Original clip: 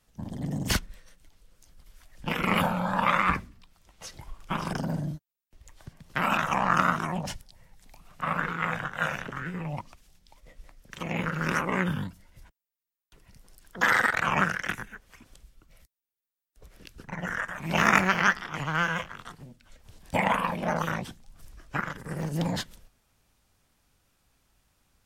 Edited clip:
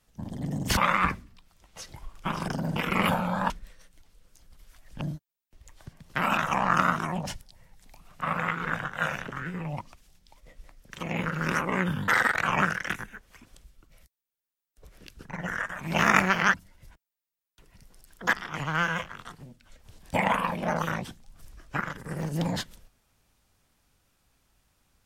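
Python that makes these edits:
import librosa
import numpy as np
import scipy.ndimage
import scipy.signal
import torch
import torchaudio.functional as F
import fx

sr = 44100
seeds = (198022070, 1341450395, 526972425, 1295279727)

y = fx.edit(x, sr, fx.swap(start_s=0.77, length_s=1.51, other_s=3.02, other_length_s=1.99),
    fx.reverse_span(start_s=8.39, length_s=0.35),
    fx.move(start_s=12.08, length_s=1.79, to_s=18.33), tone=tone)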